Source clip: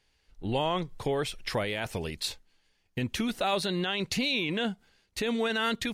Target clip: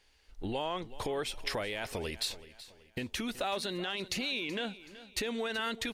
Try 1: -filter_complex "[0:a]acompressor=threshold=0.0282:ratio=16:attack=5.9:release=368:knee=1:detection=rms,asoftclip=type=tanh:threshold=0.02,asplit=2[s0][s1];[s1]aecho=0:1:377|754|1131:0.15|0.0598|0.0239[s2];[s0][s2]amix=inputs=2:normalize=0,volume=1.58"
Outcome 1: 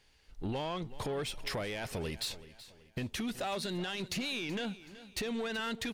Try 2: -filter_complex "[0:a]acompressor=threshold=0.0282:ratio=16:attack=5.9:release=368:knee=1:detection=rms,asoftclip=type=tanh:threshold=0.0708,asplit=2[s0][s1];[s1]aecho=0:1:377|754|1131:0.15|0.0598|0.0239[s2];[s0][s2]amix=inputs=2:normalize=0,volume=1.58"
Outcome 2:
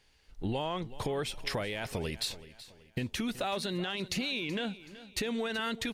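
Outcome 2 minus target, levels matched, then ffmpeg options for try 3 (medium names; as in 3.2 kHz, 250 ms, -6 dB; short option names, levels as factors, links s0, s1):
125 Hz band +5.5 dB
-filter_complex "[0:a]acompressor=threshold=0.0282:ratio=16:attack=5.9:release=368:knee=1:detection=rms,equalizer=f=140:t=o:w=1.2:g=-9,asoftclip=type=tanh:threshold=0.0708,asplit=2[s0][s1];[s1]aecho=0:1:377|754|1131:0.15|0.0598|0.0239[s2];[s0][s2]amix=inputs=2:normalize=0,volume=1.58"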